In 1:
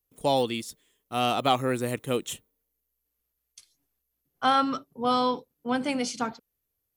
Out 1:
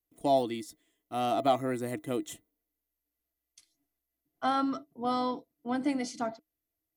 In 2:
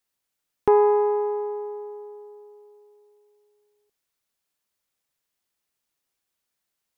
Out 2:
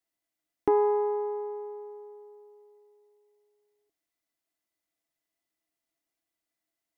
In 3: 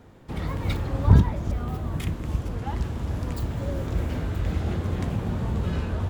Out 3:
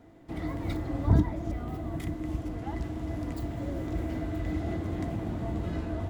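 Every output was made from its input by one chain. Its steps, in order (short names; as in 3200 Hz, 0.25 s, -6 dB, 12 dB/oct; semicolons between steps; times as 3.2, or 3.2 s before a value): dynamic EQ 2700 Hz, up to -6 dB, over -48 dBFS, Q 2.3; small resonant body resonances 310/670/2000 Hz, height 16 dB, ringing for 95 ms; gain -7.5 dB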